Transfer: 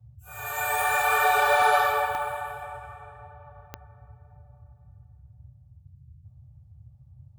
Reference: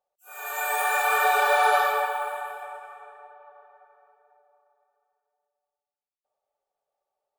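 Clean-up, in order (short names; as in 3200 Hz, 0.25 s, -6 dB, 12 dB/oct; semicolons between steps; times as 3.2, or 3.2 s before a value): de-click; noise print and reduce 30 dB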